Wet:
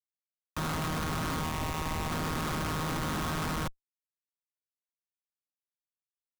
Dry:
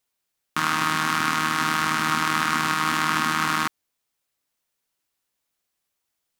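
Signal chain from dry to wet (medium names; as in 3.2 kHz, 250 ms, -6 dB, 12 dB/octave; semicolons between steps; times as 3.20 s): 1.43–2.12 s: static phaser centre 1.5 kHz, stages 6; Schmitt trigger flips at -27 dBFS; trim -5 dB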